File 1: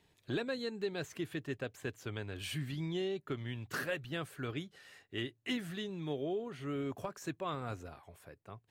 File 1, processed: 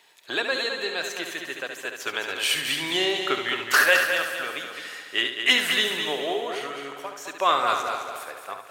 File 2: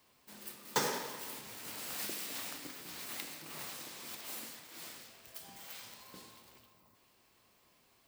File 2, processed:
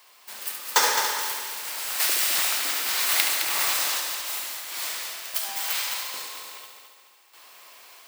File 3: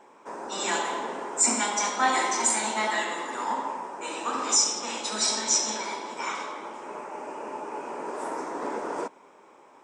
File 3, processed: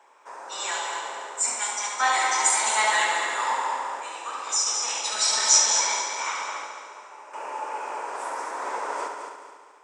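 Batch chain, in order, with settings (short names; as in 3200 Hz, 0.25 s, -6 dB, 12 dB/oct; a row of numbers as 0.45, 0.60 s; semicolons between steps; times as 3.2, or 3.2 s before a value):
random-step tremolo 1.5 Hz, depth 75%; HPF 780 Hz 12 dB/oct; on a send: multi-head echo 71 ms, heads first and third, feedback 57%, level -7.5 dB; on the sum: match loudness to -24 LUFS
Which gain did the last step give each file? +21.5, +20.5, +5.5 dB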